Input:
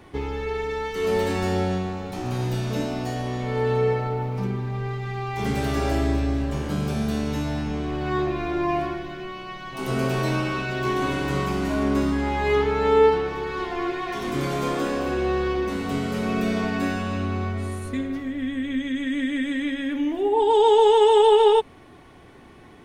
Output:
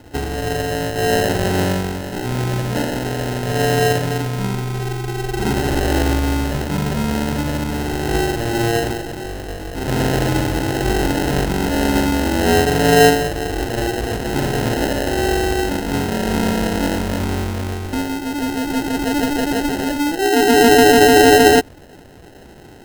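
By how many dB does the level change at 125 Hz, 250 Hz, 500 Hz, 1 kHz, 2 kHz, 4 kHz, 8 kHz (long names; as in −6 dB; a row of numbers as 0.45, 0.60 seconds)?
+6.5, +7.0, +4.5, +5.5, +10.0, +10.0, +17.0 decibels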